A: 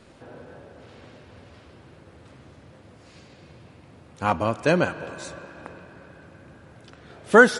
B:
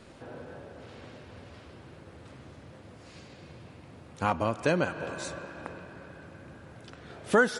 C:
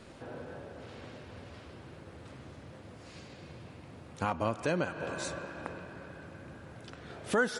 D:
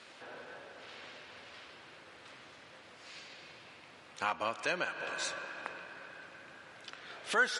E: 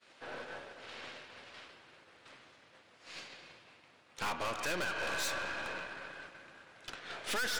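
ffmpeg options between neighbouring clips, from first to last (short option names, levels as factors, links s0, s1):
-af "acompressor=threshold=0.0501:ratio=2"
-af "alimiter=limit=0.133:level=0:latency=1:release=316"
-af "bandpass=f=3000:t=q:w=0.64:csg=0,volume=1.88"
-af "agate=range=0.0224:threshold=0.00562:ratio=3:detection=peak,aeval=exprs='(tanh(126*val(0)+0.55)-tanh(0.55))/126':c=same,volume=2.82"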